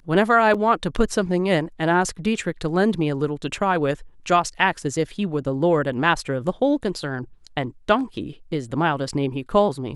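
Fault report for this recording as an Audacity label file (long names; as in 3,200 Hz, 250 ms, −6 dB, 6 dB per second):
0.540000	0.540000	drop-out 4.9 ms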